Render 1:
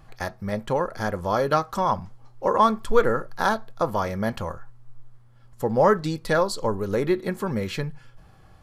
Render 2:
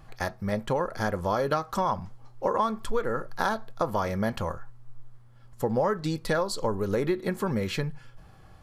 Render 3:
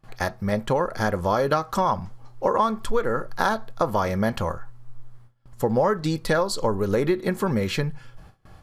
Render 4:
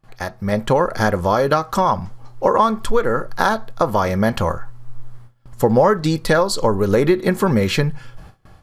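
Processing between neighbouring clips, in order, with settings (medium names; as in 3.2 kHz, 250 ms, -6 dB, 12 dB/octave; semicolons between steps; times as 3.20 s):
compression 6:1, threshold -22 dBFS, peak gain reduction 11 dB
gate with hold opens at -41 dBFS; trim +4.5 dB
level rider gain up to 11.5 dB; trim -1.5 dB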